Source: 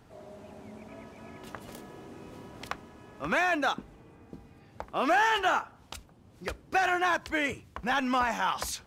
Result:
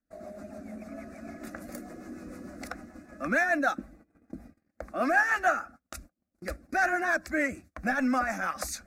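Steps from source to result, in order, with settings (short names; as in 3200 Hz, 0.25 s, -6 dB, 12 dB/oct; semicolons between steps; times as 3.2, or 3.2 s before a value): bin magnitudes rounded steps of 15 dB; rotary speaker horn 6.7 Hz; in parallel at -3 dB: compressor 12:1, threshold -43 dBFS, peak gain reduction 21.5 dB; on the sum: fixed phaser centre 630 Hz, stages 8; gate -52 dBFS, range -32 dB; gain +4.5 dB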